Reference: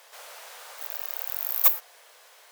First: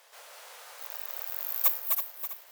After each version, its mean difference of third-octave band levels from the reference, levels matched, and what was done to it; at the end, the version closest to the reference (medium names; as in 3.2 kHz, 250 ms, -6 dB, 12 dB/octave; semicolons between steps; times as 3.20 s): 2.5 dB: backward echo that repeats 163 ms, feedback 61%, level -4 dB; bass shelf 66 Hz +9 dB; trim -5.5 dB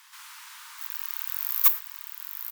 4.0 dB: steep high-pass 910 Hz 96 dB/octave; on a send: delay 903 ms -7 dB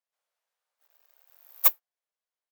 15.0 dB: doubling 13 ms -13.5 dB; upward expansion 2.5:1, over -43 dBFS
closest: first